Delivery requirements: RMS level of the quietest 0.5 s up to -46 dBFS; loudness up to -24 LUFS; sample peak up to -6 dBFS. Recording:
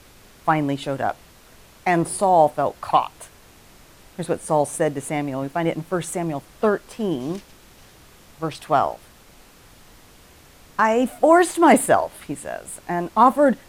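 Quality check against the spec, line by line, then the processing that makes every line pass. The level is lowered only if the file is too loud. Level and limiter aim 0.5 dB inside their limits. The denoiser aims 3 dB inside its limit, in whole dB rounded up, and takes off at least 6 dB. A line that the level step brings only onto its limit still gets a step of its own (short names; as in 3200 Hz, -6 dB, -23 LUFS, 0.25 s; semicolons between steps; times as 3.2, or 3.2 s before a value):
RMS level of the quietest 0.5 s -49 dBFS: OK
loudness -21.0 LUFS: fail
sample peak -3.5 dBFS: fail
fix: gain -3.5 dB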